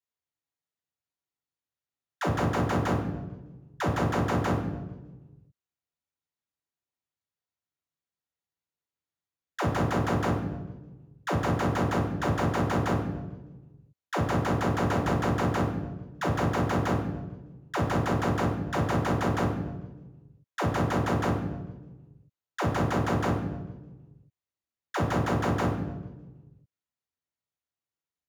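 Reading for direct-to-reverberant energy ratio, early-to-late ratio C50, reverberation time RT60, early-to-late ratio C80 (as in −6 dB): −1.0 dB, 5.5 dB, 1.2 s, 8.5 dB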